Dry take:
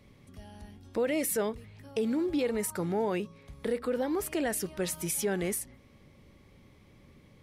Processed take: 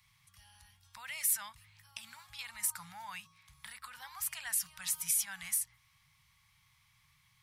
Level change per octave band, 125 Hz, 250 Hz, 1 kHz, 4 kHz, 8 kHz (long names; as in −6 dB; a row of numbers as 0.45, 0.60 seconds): −20.0, −32.5, −9.5, −1.0, +2.5 decibels